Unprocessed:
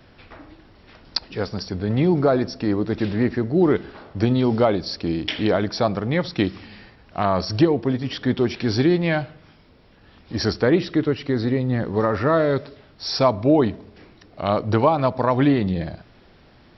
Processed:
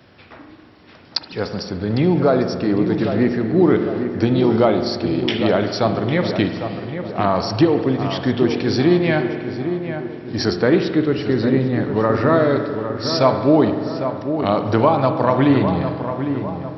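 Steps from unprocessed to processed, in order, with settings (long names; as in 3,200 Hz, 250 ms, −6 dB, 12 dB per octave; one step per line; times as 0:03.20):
high-pass filter 95 Hz
feedback echo with a low-pass in the loop 803 ms, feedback 52%, low-pass 1,700 Hz, level −8 dB
spring reverb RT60 1.9 s, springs 45 ms, chirp 30 ms, DRR 7 dB
level +2 dB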